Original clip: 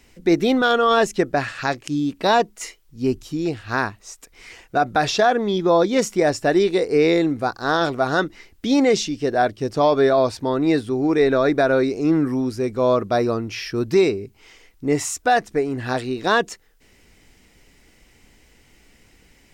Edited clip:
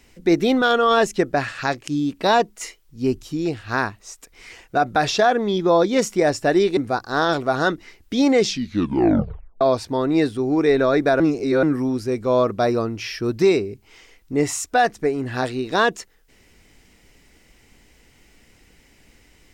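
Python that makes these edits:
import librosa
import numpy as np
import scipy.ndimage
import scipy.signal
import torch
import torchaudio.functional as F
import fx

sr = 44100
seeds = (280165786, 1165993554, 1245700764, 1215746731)

y = fx.edit(x, sr, fx.cut(start_s=6.77, length_s=0.52),
    fx.tape_stop(start_s=8.94, length_s=1.19),
    fx.reverse_span(start_s=11.72, length_s=0.43), tone=tone)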